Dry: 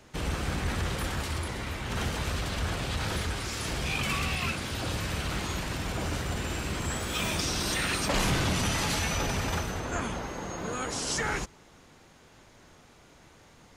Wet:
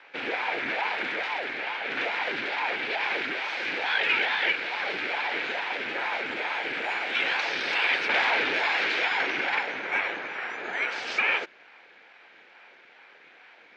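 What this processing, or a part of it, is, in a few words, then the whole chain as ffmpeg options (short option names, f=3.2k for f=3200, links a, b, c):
voice changer toy: -af "aeval=exprs='val(0)*sin(2*PI*570*n/s+570*0.7/2.3*sin(2*PI*2.3*n/s))':c=same,highpass=480,equalizer=f=620:t=q:w=4:g=-5,equalizer=f=1.1k:t=q:w=4:g=-8,equalizer=f=1.6k:t=q:w=4:g=7,equalizer=f=2.3k:t=q:w=4:g=10,lowpass=f=3.8k:w=0.5412,lowpass=f=3.8k:w=1.3066,volume=5.5dB"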